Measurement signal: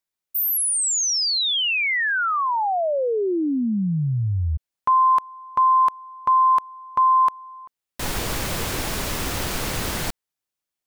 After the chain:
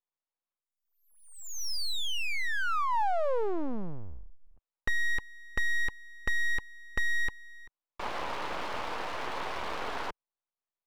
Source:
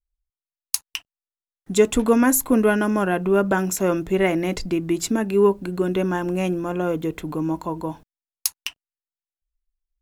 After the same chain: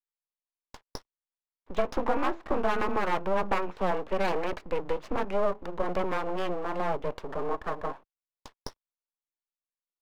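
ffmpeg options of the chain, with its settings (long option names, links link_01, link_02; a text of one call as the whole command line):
ffmpeg -i in.wav -af "highpass=frequency=160:width_type=q:width=0.5412,highpass=frequency=160:width_type=q:width=1.307,lowpass=frequency=3100:width_type=q:width=0.5176,lowpass=frequency=3100:width_type=q:width=0.7071,lowpass=frequency=3100:width_type=q:width=1.932,afreqshift=-95,adynamicequalizer=threshold=0.00891:dfrequency=530:dqfactor=5.2:tfrequency=530:tqfactor=5.2:attack=5:release=100:ratio=0.375:range=3:mode=cutabove:tftype=bell,acompressor=threshold=-21dB:ratio=4:attack=55:release=51:knee=1:detection=rms,aeval=exprs='abs(val(0))':channel_layout=same,equalizer=frequency=125:width_type=o:width=1:gain=-6,equalizer=frequency=500:width_type=o:width=1:gain=5,equalizer=frequency=1000:width_type=o:width=1:gain=9,volume=-6.5dB" out.wav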